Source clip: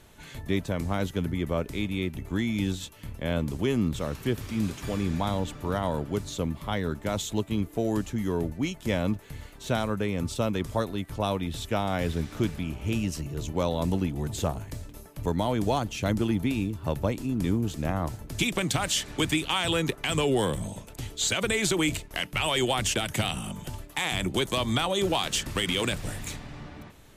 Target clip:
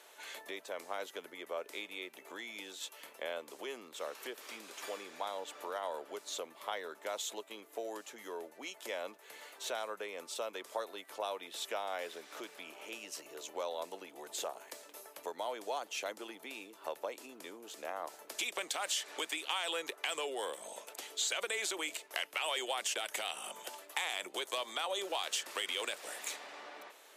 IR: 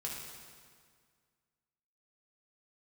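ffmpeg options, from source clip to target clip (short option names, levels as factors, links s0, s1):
-af "acompressor=threshold=0.02:ratio=3,highpass=f=460:w=0.5412,highpass=f=460:w=1.3066"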